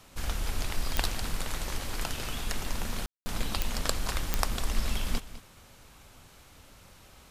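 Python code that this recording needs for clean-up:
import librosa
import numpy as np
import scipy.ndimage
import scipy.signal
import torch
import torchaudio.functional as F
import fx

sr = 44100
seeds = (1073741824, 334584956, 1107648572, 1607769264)

y = fx.fix_declick_ar(x, sr, threshold=10.0)
y = fx.fix_ambience(y, sr, seeds[0], print_start_s=6.27, print_end_s=6.77, start_s=3.06, end_s=3.26)
y = fx.fix_echo_inverse(y, sr, delay_ms=204, level_db=-15.5)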